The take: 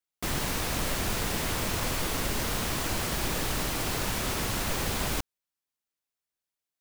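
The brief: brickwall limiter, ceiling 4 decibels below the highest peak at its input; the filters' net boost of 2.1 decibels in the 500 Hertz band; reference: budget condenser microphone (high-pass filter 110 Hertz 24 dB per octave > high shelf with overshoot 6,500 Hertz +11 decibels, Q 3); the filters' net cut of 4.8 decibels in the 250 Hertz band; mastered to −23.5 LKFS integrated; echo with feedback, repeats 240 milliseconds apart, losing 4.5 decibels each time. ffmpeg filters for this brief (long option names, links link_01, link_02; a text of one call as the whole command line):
ffmpeg -i in.wav -af "equalizer=frequency=250:width_type=o:gain=-8.5,equalizer=frequency=500:width_type=o:gain=5,alimiter=limit=-21dB:level=0:latency=1,highpass=frequency=110:width=0.5412,highpass=frequency=110:width=1.3066,highshelf=frequency=6500:width_type=q:width=3:gain=11,aecho=1:1:240|480|720|960|1200|1440|1680|1920|2160:0.596|0.357|0.214|0.129|0.0772|0.0463|0.0278|0.0167|0.01,volume=-3.5dB" out.wav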